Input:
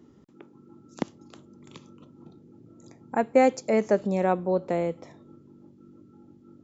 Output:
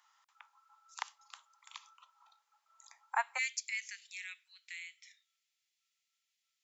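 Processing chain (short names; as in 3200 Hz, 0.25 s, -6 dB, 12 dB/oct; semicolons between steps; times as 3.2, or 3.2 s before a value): steep high-pass 890 Hz 48 dB/oct, from 3.37 s 2000 Hz; gain +1.5 dB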